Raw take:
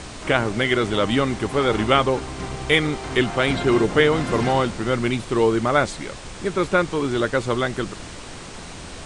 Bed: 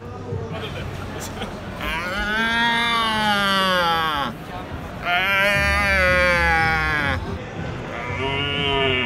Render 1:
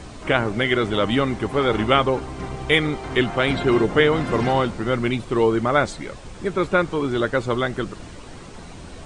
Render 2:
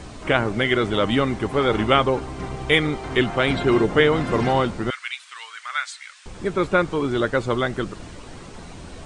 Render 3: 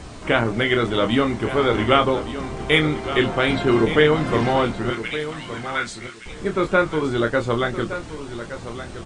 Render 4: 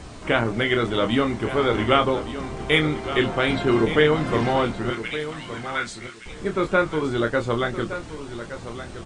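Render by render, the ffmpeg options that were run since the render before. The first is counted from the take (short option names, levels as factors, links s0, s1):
-af "afftdn=nr=8:nf=-37"
-filter_complex "[0:a]asettb=1/sr,asplit=3[s0][s1][s2];[s0]atrim=end=4.904[s3];[s1]atrim=start=4.9:end=6.26,asetpts=PTS-STARTPTS,afade=t=in:d=0.004:c=qsin,afade=t=out:st=1.356:d=0.004:c=qsin,highpass=f=1500:w=0.5412,highpass=f=1500:w=1.3066[s4];[s2]atrim=start=6.256[s5];[s3][s4]acrossfade=d=0.004:c1=hsin:c2=qsin[s6];[s6][s5]acrossfade=d=0.004:c1=qsin:c2=hsin"
-filter_complex "[0:a]asplit=2[s0][s1];[s1]adelay=26,volume=0.447[s2];[s0][s2]amix=inputs=2:normalize=0,aecho=1:1:1168|2336:0.251|0.0402"
-af "volume=0.794"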